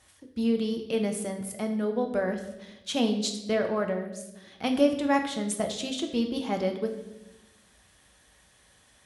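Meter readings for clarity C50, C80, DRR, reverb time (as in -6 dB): 8.5 dB, 11.0 dB, 4.0 dB, 0.95 s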